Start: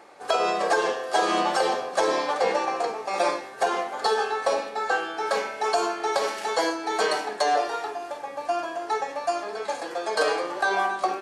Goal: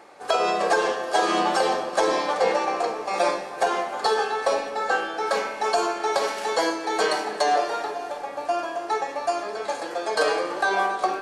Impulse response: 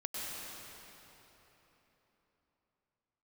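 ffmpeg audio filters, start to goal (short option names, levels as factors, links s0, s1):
-filter_complex "[0:a]asplit=2[s0][s1];[1:a]atrim=start_sample=2205,lowshelf=f=250:g=10[s2];[s1][s2]afir=irnorm=-1:irlink=0,volume=0.2[s3];[s0][s3]amix=inputs=2:normalize=0"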